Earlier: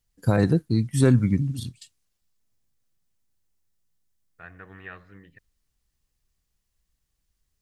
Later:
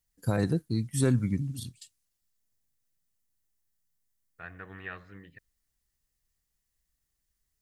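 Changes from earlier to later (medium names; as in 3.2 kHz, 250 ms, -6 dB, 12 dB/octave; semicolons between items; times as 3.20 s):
first voice -7.0 dB; master: add treble shelf 5.8 kHz +9 dB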